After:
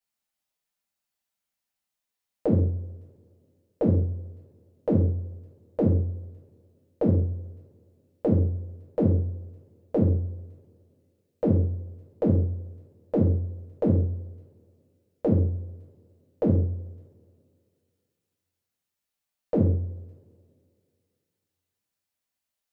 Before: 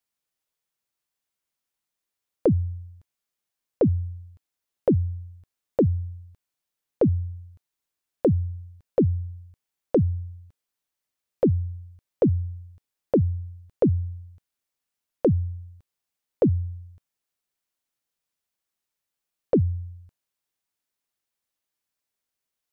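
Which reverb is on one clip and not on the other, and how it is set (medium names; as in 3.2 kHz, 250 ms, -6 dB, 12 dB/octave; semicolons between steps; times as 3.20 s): two-slope reverb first 0.51 s, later 2.4 s, from -26 dB, DRR -6 dB; trim -7.5 dB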